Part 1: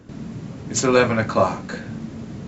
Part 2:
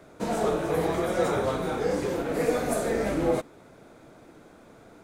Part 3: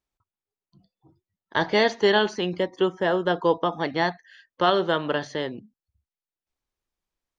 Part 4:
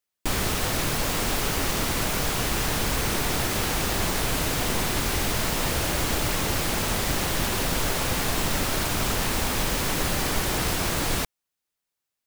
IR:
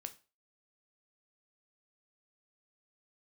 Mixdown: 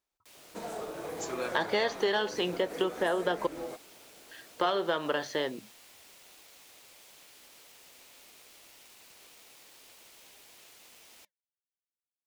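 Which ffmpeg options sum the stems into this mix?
-filter_complex "[0:a]adelay=450,volume=-14.5dB[link_01];[1:a]acompressor=threshold=-27dB:ratio=6,adelay=350,volume=-2.5dB[link_02];[2:a]bandreject=frequency=60:width_type=h:width=6,bandreject=frequency=120:width_type=h:width=6,acontrast=56,volume=-1.5dB,asplit=3[link_03][link_04][link_05];[link_03]atrim=end=3.47,asetpts=PTS-STARTPTS,afade=type=out:start_time=3.466:duration=0.004:curve=hsin[link_06];[link_04]atrim=start=3.47:end=4.31,asetpts=PTS-STARTPTS,volume=0[link_07];[link_05]atrim=start=4.31,asetpts=PTS-STARTPTS,afade=type=in:duration=0.004:curve=hsin[link_08];[link_06][link_07][link_08]concat=n=3:v=0:a=1[link_09];[3:a]highpass=870,aeval=exprs='val(0)*sin(2*PI*1400*n/s)':channel_layout=same,volume=-19.5dB[link_10];[link_01][link_02][link_09][link_10]amix=inputs=4:normalize=0,flanger=delay=0.6:depth=3.3:regen=-87:speed=1.8:shape=triangular,bass=frequency=250:gain=-10,treble=frequency=4000:gain=1,acompressor=threshold=-25dB:ratio=6"

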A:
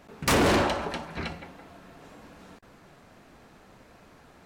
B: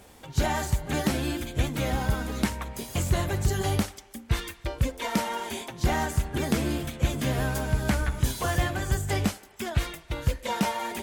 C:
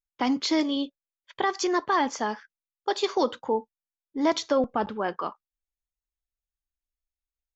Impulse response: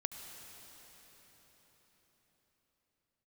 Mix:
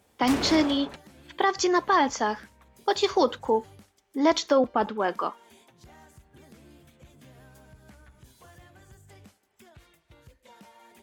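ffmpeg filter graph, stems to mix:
-filter_complex "[0:a]volume=-9dB[link_01];[1:a]highpass=60,acompressor=threshold=-46dB:ratio=2,asoftclip=type=tanh:threshold=-30dB,volume=-12dB[link_02];[2:a]highpass=190,volume=2.5dB,asplit=2[link_03][link_04];[link_04]apad=whole_len=196620[link_05];[link_01][link_05]sidechaingate=range=-20dB:threshold=-39dB:ratio=16:detection=peak[link_06];[link_06][link_02][link_03]amix=inputs=3:normalize=0"

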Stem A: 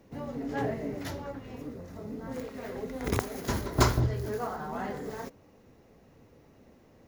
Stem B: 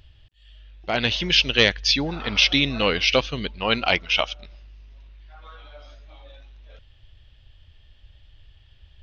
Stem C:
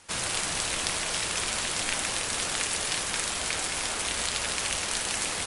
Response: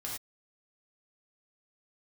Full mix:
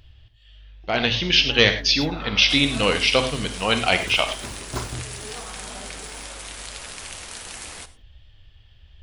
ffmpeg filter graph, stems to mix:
-filter_complex "[0:a]adelay=950,volume=-7dB[link_01];[1:a]volume=-2.5dB,asplit=2[link_02][link_03];[link_03]volume=-3dB[link_04];[2:a]adelay=2400,volume=-8.5dB,asplit=2[link_05][link_06];[link_06]volume=-11dB[link_07];[3:a]atrim=start_sample=2205[link_08];[link_04][link_07]amix=inputs=2:normalize=0[link_09];[link_09][link_08]afir=irnorm=-1:irlink=0[link_10];[link_01][link_02][link_05][link_10]amix=inputs=4:normalize=0"

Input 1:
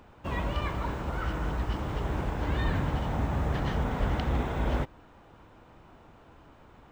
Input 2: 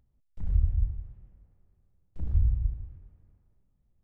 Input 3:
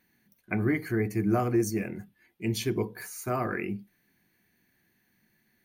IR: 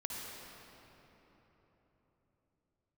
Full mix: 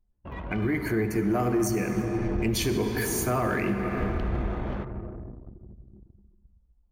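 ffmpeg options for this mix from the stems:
-filter_complex "[0:a]volume=-8.5dB,asplit=2[link_01][link_02];[link_02]volume=-6dB[link_03];[1:a]equalizer=frequency=75:width_type=o:width=1.7:gain=4,adelay=1800,volume=-10dB,asplit=2[link_04][link_05];[link_05]volume=-6.5dB[link_06];[2:a]highpass=frequency=50:poles=1,dynaudnorm=framelen=150:gausssize=11:maxgain=14dB,asoftclip=type=tanh:threshold=-6dB,volume=-2dB,asplit=2[link_07][link_08];[link_08]volume=-4dB[link_09];[link_04][link_07]amix=inputs=2:normalize=0,adynamicequalizer=threshold=0.0178:dfrequency=110:dqfactor=1.4:tfrequency=110:tqfactor=1.4:attack=5:release=100:ratio=0.375:range=2.5:mode=cutabove:tftype=bell,alimiter=limit=-14.5dB:level=0:latency=1:release=11,volume=0dB[link_10];[3:a]atrim=start_sample=2205[link_11];[link_03][link_06][link_09]amix=inputs=3:normalize=0[link_12];[link_12][link_11]afir=irnorm=-1:irlink=0[link_13];[link_01][link_10][link_13]amix=inputs=3:normalize=0,anlmdn=0.398,alimiter=limit=-17.5dB:level=0:latency=1:release=383"

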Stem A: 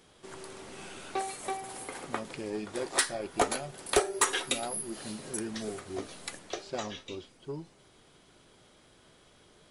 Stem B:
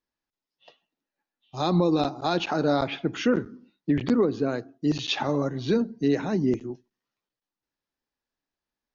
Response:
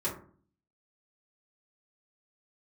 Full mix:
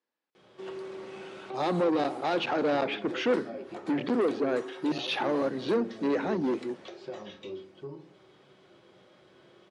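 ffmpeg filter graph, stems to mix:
-filter_complex "[0:a]alimiter=level_in=3.5dB:limit=-24dB:level=0:latency=1:release=172,volume=-3.5dB,acompressor=threshold=-42dB:ratio=3,adelay=350,volume=-3dB,asplit=2[link_01][link_02];[link_02]volume=-5.5dB[link_03];[1:a]highpass=230,asoftclip=type=tanh:threshold=-25.5dB,volume=2dB[link_04];[2:a]atrim=start_sample=2205[link_05];[link_03][link_05]afir=irnorm=-1:irlink=0[link_06];[link_01][link_04][link_06]amix=inputs=3:normalize=0,highpass=140,lowpass=3800,equalizer=frequency=500:width=5.5:gain=5.5"

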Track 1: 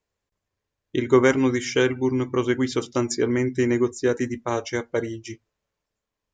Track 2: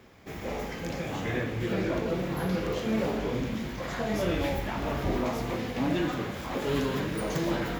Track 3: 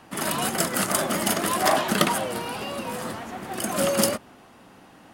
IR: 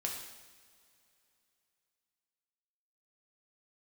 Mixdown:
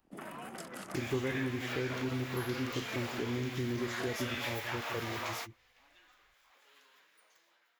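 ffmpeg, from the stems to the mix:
-filter_complex "[0:a]aemphasis=mode=reproduction:type=riaa,volume=-8.5dB,asplit=3[link_01][link_02][link_03];[link_02]volume=-10.5dB[link_04];[1:a]dynaudnorm=framelen=140:gausssize=9:maxgain=9.5dB,highpass=1300,volume=1dB[link_05];[2:a]afwtdn=0.02,acrossover=split=150|5300[link_06][link_07][link_08];[link_06]acompressor=threshold=-53dB:ratio=4[link_09];[link_07]acompressor=threshold=-30dB:ratio=4[link_10];[link_08]acompressor=threshold=-40dB:ratio=4[link_11];[link_09][link_10][link_11]amix=inputs=3:normalize=0,volume=-11dB[link_12];[link_03]apad=whole_len=343856[link_13];[link_05][link_13]sidechaingate=range=-35dB:threshold=-47dB:ratio=16:detection=peak[link_14];[link_04]aecho=0:1:172:1[link_15];[link_01][link_14][link_12][link_15]amix=inputs=4:normalize=0,acompressor=threshold=-42dB:ratio=2"

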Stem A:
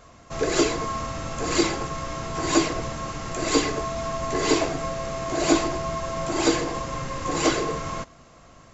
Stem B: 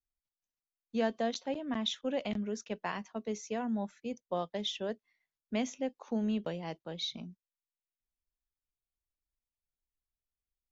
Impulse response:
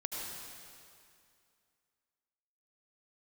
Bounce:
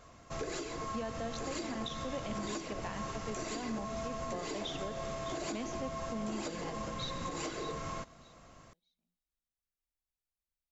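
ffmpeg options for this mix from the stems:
-filter_complex "[0:a]acompressor=threshold=-29dB:ratio=4,volume=-6.5dB[link_01];[1:a]volume=-6dB,asplit=3[link_02][link_03][link_04];[link_03]volume=-9.5dB[link_05];[link_04]volume=-10dB[link_06];[2:a]atrim=start_sample=2205[link_07];[link_05][link_07]afir=irnorm=-1:irlink=0[link_08];[link_06]aecho=0:1:611|1222|1833:1|0.2|0.04[link_09];[link_01][link_02][link_08][link_09]amix=inputs=4:normalize=0,alimiter=level_in=4.5dB:limit=-24dB:level=0:latency=1:release=136,volume=-4.5dB"

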